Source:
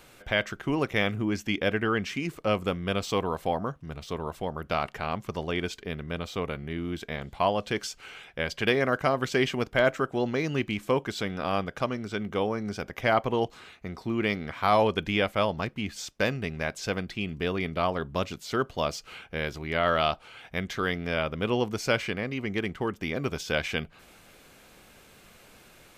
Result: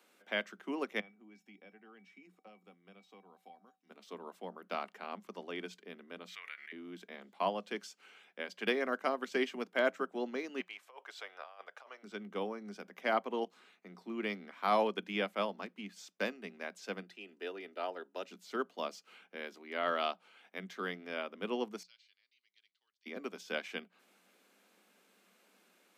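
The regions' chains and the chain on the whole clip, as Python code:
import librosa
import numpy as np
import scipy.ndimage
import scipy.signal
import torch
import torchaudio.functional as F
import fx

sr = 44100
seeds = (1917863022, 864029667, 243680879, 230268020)

y = fx.chain(x, sr, fx.bass_treble(bass_db=4, treble_db=-4),
    fx.comb_fb(f0_hz=770.0, decay_s=0.19, harmonics='odd', damping=0.0, mix_pct=90),
    fx.band_squash(depth_pct=100), at=(1.0, 3.9))
y = fx.chain(y, sr, fx.highpass_res(hz=1900.0, q=3.6),
    fx.pre_swell(db_per_s=61.0), at=(6.28, 6.72))
y = fx.chain(y, sr, fx.highpass(hz=590.0, slope=24),
    fx.high_shelf(hz=4500.0, db=-7.0),
    fx.over_compress(threshold_db=-34.0, ratio=-0.5), at=(10.6, 12.03))
y = fx.chain(y, sr, fx.highpass(hz=300.0, slope=24),
    fx.notch_comb(f0_hz=1100.0), at=(17.02, 18.29))
y = fx.chain(y, sr, fx.ladder_bandpass(hz=4600.0, resonance_pct=65),
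    fx.tilt_eq(slope=-2.0), at=(21.83, 23.06))
y = scipy.signal.sosfilt(scipy.signal.cheby1(10, 1.0, 180.0, 'highpass', fs=sr, output='sos'), y)
y = fx.upward_expand(y, sr, threshold_db=-35.0, expansion=1.5)
y = y * 10.0 ** (-6.0 / 20.0)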